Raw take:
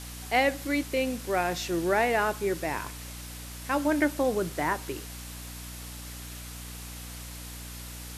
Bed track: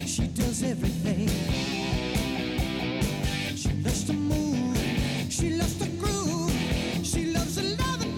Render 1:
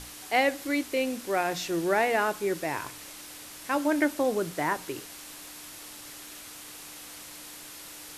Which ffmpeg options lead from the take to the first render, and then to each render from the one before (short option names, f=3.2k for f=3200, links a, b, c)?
-af "bandreject=f=60:t=h:w=6,bandreject=f=120:t=h:w=6,bandreject=f=180:t=h:w=6,bandreject=f=240:t=h:w=6"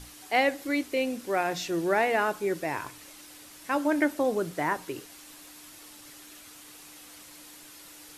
-af "afftdn=nr=6:nf=-45"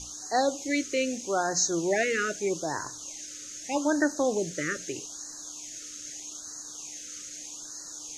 -af "lowpass=f=6.5k:t=q:w=9.8,afftfilt=real='re*(1-between(b*sr/1024,820*pow(2800/820,0.5+0.5*sin(2*PI*0.8*pts/sr))/1.41,820*pow(2800/820,0.5+0.5*sin(2*PI*0.8*pts/sr))*1.41))':imag='im*(1-between(b*sr/1024,820*pow(2800/820,0.5+0.5*sin(2*PI*0.8*pts/sr))/1.41,820*pow(2800/820,0.5+0.5*sin(2*PI*0.8*pts/sr))*1.41))':win_size=1024:overlap=0.75"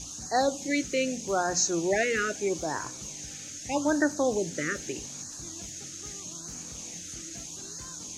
-filter_complex "[1:a]volume=-21dB[a];[0:a][a]amix=inputs=2:normalize=0"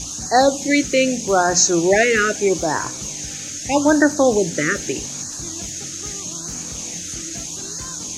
-af "volume=11dB,alimiter=limit=-2dB:level=0:latency=1"